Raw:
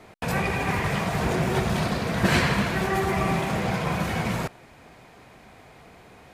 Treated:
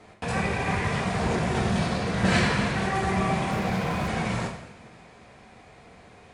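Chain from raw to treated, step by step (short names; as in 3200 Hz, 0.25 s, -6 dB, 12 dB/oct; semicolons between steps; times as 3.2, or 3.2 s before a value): downsampling 22050 Hz; two-slope reverb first 0.76 s, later 2.8 s, from -18 dB, DRR 1.5 dB; 3.51–4.08 running maximum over 3 samples; gain -3.5 dB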